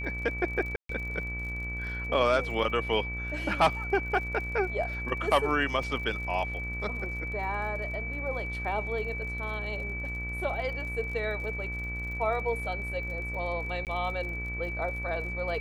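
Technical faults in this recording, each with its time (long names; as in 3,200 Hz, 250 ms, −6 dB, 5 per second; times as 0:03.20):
mains buzz 60 Hz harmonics 33 −37 dBFS
surface crackle 48 per second −40 dBFS
whistle 2,300 Hz −35 dBFS
0:00.76–0:00.89: drop-out 133 ms
0:05.83: drop-out 2.9 ms
0:13.85–0:13.87: drop-out 18 ms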